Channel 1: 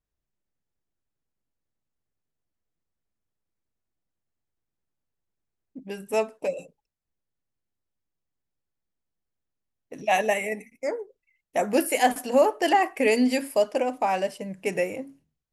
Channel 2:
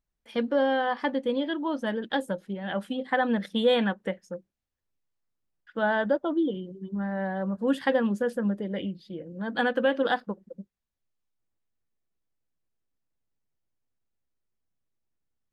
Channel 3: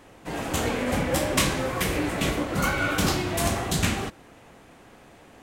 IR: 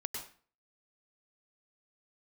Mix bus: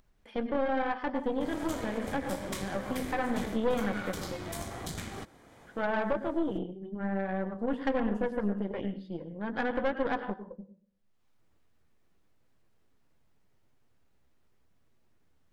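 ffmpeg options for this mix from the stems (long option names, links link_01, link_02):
-filter_complex "[1:a]acrossover=split=2600[link_01][link_02];[link_02]acompressor=threshold=-51dB:ratio=4:attack=1:release=60[link_03];[link_01][link_03]amix=inputs=2:normalize=0,highshelf=frequency=4300:gain=-11.5,flanger=delay=7.6:depth=5.9:regen=-42:speed=0.8:shape=triangular,volume=3dB,asplit=2[link_04][link_05];[link_05]volume=-3.5dB[link_06];[2:a]bandreject=frequency=2700:width=6.2,adelay=1150,volume=-2dB[link_07];[link_04][link_07]amix=inputs=2:normalize=0,acompressor=threshold=-31dB:ratio=5,volume=0dB[link_08];[3:a]atrim=start_sample=2205[link_09];[link_06][link_09]afir=irnorm=-1:irlink=0[link_10];[link_08][link_10]amix=inputs=2:normalize=0,aeval=exprs='(tanh(12.6*val(0)+0.8)-tanh(0.8))/12.6':channel_layout=same,acompressor=mode=upward:threshold=-50dB:ratio=2.5"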